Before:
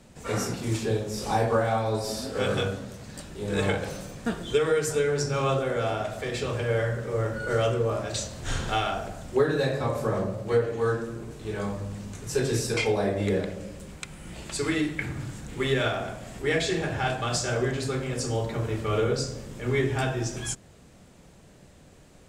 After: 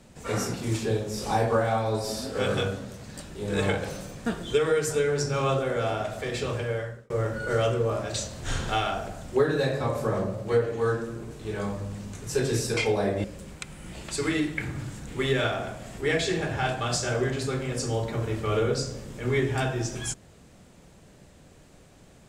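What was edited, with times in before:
6.52–7.1 fade out
13.24–13.65 cut

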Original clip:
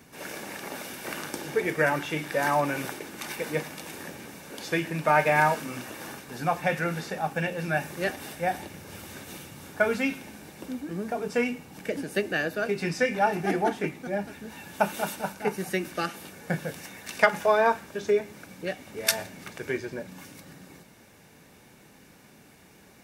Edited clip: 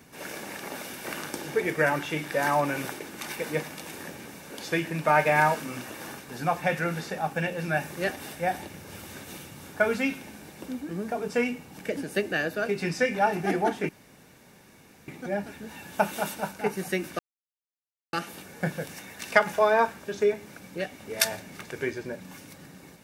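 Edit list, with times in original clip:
13.89 insert room tone 1.19 s
16 insert silence 0.94 s

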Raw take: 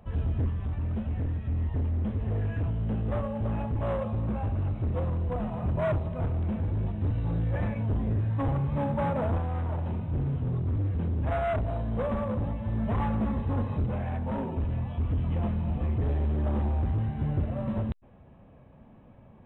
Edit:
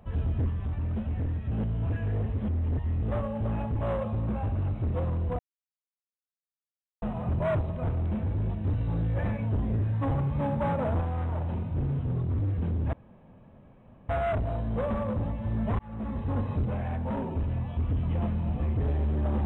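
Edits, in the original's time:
1.51–3.02 reverse
5.39 insert silence 1.63 s
11.3 insert room tone 1.16 s
13–13.74 fade in equal-power

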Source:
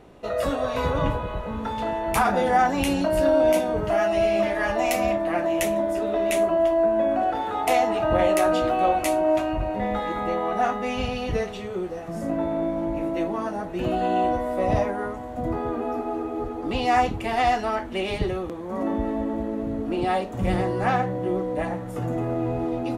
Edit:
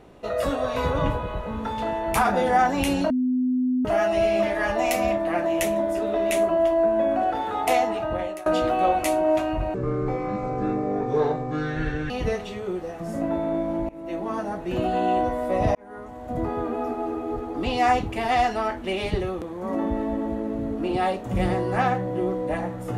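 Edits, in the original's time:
3.1–3.85 bleep 253 Hz -19.5 dBFS
7.73–8.46 fade out, to -22 dB
9.74–11.18 speed 61%
12.97–13.42 fade in, from -22 dB
14.83–15.47 fade in

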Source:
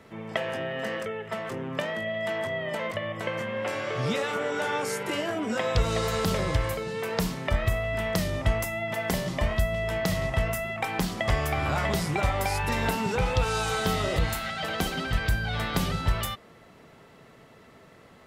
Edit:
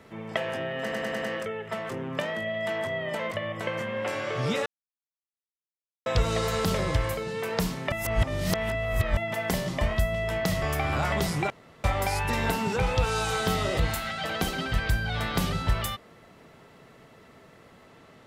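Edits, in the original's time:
0.82 stutter 0.10 s, 5 plays
4.26–5.66 mute
7.52–8.77 reverse
10.22–11.35 cut
12.23 insert room tone 0.34 s

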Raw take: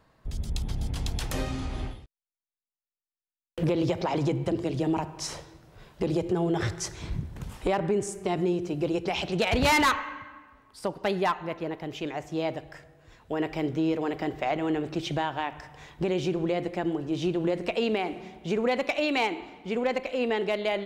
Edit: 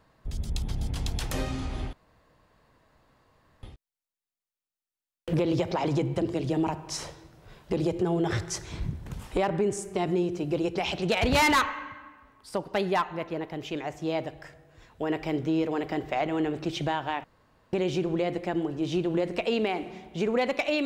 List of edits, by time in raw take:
1.93 insert room tone 1.70 s
15.54–16.03 room tone

